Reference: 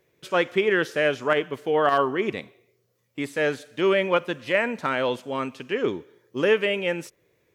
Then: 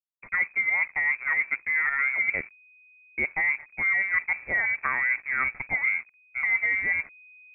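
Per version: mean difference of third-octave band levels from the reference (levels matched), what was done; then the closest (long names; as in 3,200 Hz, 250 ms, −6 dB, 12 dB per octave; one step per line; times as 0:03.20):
13.0 dB: treble cut that deepens with the level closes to 750 Hz, closed at −20 dBFS
reversed playback
downward compressor 12 to 1, threshold −27 dBFS, peak gain reduction 11 dB
reversed playback
slack as between gear wheels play −41 dBFS
voice inversion scrambler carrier 2,500 Hz
level +5.5 dB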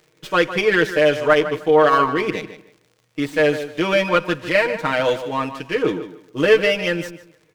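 4.5 dB: comb filter 6.4 ms, depth 96%
surface crackle 180 per second −48 dBFS
on a send: tape delay 152 ms, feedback 24%, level −11 dB, low-pass 3,600 Hz
on the sum: windowed peak hold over 3 samples
level +3 dB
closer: second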